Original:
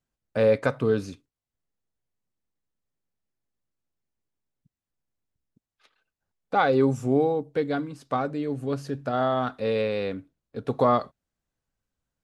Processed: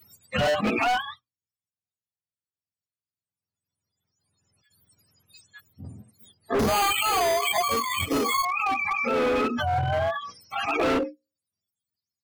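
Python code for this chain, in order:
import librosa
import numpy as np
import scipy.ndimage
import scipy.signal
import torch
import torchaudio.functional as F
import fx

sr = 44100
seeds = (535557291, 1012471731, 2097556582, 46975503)

y = fx.octave_mirror(x, sr, pivot_hz=570.0)
y = fx.hum_notches(y, sr, base_hz=60, count=9)
y = fx.noise_reduce_blind(y, sr, reduce_db=23)
y = fx.resample_bad(y, sr, factor=8, down='none', up='hold', at=(6.59, 8.45))
y = fx.high_shelf(y, sr, hz=3300.0, db=-11.0, at=(9.75, 10.16))
y = np.clip(10.0 ** (28.0 / 20.0) * y, -1.0, 1.0) / 10.0 ** (28.0 / 20.0)
y = fx.pre_swell(y, sr, db_per_s=23.0)
y = F.gain(torch.from_numpy(y), 7.0).numpy()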